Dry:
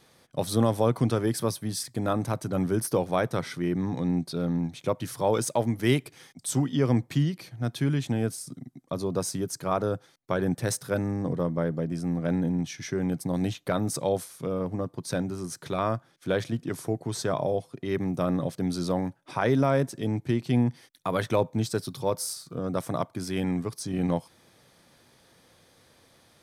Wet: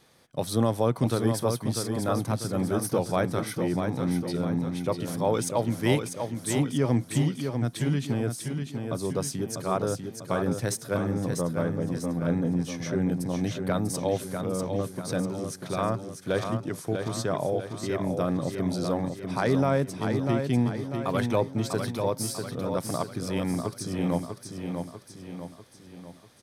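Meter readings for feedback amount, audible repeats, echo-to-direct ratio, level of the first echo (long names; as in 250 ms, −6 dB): 49%, 5, −5.0 dB, −6.0 dB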